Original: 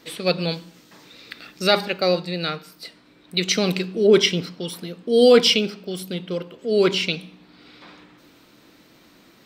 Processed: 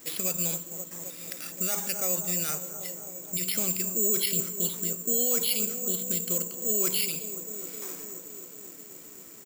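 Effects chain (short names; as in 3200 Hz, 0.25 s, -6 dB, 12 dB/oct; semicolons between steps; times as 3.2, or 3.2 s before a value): compressor 1.5:1, threshold -31 dBFS, peak gain reduction 8 dB; on a send: analogue delay 0.262 s, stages 2048, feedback 76%, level -14 dB; on the sum: downsampling 11025 Hz; limiter -19.5 dBFS, peak gain reduction 9 dB; dynamic EQ 430 Hz, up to -4 dB, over -39 dBFS, Q 0.93; careless resampling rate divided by 6×, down filtered, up zero stuff; gain -3.5 dB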